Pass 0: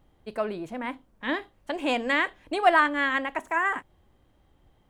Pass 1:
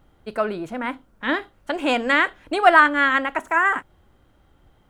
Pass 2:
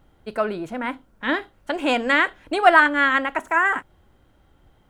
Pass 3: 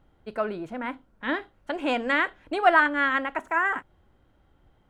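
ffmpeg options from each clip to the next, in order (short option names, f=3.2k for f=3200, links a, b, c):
-af "equalizer=f=1.4k:w=6.6:g=9.5,volume=5dB"
-af "bandreject=f=1.2k:w=24"
-af "highshelf=f=5.2k:g=-9,volume=-4.5dB"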